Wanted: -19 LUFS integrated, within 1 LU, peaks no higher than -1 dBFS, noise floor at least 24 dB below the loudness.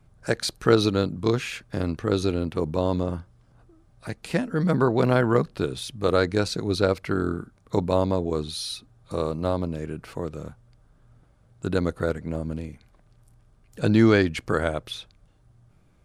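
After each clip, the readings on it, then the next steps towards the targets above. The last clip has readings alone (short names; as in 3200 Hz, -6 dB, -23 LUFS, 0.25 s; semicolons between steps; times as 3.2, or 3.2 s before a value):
loudness -25.0 LUFS; peak -4.0 dBFS; loudness target -19.0 LUFS
-> gain +6 dB; limiter -1 dBFS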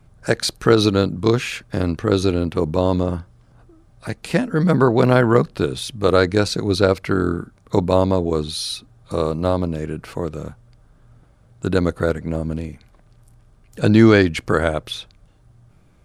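loudness -19.5 LUFS; peak -1.0 dBFS; noise floor -53 dBFS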